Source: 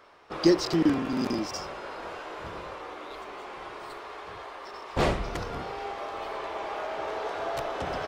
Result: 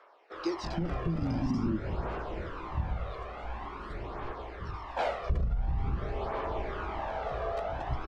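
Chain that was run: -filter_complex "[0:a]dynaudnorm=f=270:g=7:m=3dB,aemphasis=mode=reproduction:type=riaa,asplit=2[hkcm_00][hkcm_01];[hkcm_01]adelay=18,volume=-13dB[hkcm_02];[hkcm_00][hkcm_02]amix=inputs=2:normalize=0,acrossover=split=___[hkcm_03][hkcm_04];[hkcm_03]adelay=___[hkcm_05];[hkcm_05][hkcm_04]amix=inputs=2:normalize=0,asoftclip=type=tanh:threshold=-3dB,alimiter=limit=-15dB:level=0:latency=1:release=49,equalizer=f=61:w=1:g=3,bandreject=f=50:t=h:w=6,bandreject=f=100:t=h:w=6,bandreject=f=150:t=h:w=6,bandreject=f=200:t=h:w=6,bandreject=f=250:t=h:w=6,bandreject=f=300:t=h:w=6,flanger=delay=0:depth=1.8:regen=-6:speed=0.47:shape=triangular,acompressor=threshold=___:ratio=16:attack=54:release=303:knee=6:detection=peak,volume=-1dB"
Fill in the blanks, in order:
440, 330, -26dB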